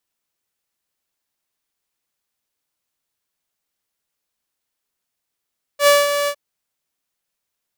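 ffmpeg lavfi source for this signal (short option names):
-f lavfi -i "aevalsrc='0.501*(2*mod(576*t,1)-1)':d=0.558:s=44100,afade=t=in:d=0.082,afade=t=out:st=0.082:d=0.197:silence=0.355,afade=t=out:st=0.49:d=0.068"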